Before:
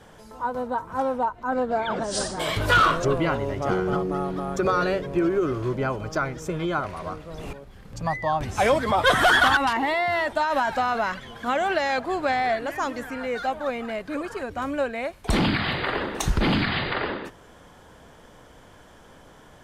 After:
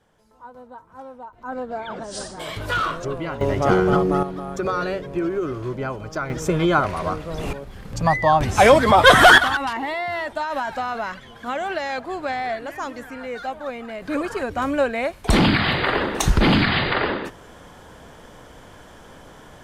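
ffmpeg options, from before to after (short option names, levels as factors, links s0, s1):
-af "asetnsamples=n=441:p=0,asendcmd='1.33 volume volume -5dB;3.41 volume volume 7dB;4.23 volume volume -1.5dB;6.3 volume volume 8dB;9.38 volume volume -2.5dB;14.02 volume volume 5.5dB',volume=0.2"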